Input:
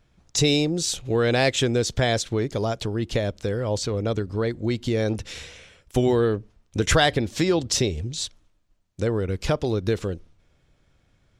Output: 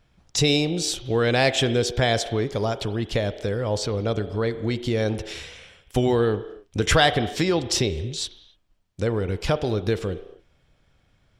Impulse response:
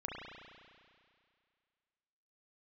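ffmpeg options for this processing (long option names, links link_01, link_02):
-filter_complex "[0:a]asplit=2[link_01][link_02];[link_02]highpass=frequency=290:width=0.5412,highpass=frequency=290:width=1.3066,equalizer=frequency=390:width_type=q:width=4:gain=6,equalizer=frequency=730:width_type=q:width=4:gain=7,equalizer=frequency=3200:width_type=q:width=4:gain=9,equalizer=frequency=6000:width_type=q:width=4:gain=10,lowpass=frequency=7900:width=0.5412,lowpass=frequency=7900:width=1.3066[link_03];[1:a]atrim=start_sample=2205,afade=type=out:start_time=0.34:duration=0.01,atrim=end_sample=15435[link_04];[link_03][link_04]afir=irnorm=-1:irlink=0,volume=-12.5dB[link_05];[link_01][link_05]amix=inputs=2:normalize=0"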